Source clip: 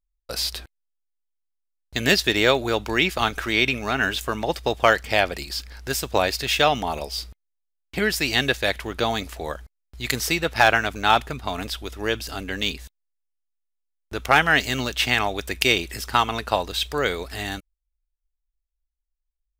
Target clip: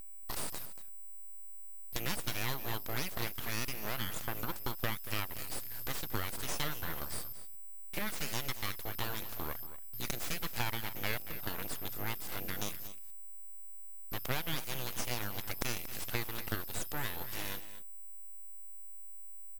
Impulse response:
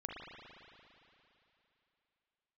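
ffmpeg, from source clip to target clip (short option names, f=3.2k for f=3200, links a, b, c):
-af "acompressor=threshold=-31dB:ratio=3,aeval=exprs='val(0)+0.0126*sin(2*PI*13000*n/s)':c=same,aeval=exprs='abs(val(0))':c=same,aecho=1:1:232:0.2,volume=-3.5dB"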